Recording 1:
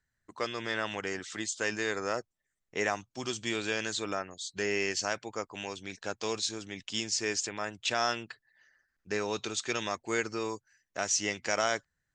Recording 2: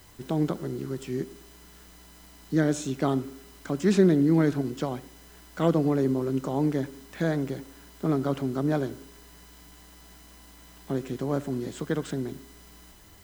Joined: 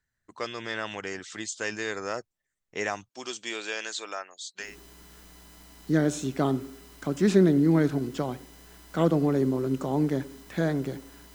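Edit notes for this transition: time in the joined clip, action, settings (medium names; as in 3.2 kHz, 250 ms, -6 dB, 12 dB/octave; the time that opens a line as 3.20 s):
recording 1
3.08–4.76 s: high-pass 280 Hz -> 860 Hz
4.67 s: go over to recording 2 from 1.30 s, crossfade 0.18 s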